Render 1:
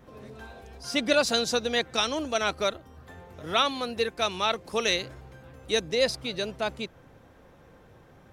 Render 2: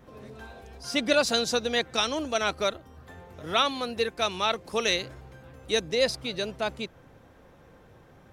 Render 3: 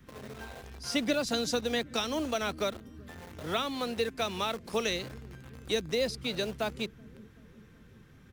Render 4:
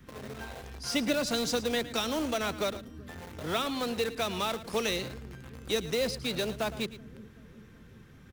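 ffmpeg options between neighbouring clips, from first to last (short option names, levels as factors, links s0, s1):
-af anull
-filter_complex "[0:a]acrossover=split=350[s0][s1];[s1]acompressor=threshold=0.0355:ratio=6[s2];[s0][s2]amix=inputs=2:normalize=0,acrossover=split=360|1200[s3][s4][s5];[s3]aecho=1:1:380|760|1140|1520|1900|2280|2660:0.224|0.134|0.0806|0.0484|0.029|0.0174|0.0104[s6];[s4]acrusher=bits=7:mix=0:aa=0.000001[s7];[s6][s7][s5]amix=inputs=3:normalize=0"
-filter_complex "[0:a]asplit=2[s0][s1];[s1]aeval=exprs='(mod(25.1*val(0)+1,2)-1)/25.1':c=same,volume=0.316[s2];[s0][s2]amix=inputs=2:normalize=0,aecho=1:1:111:0.178"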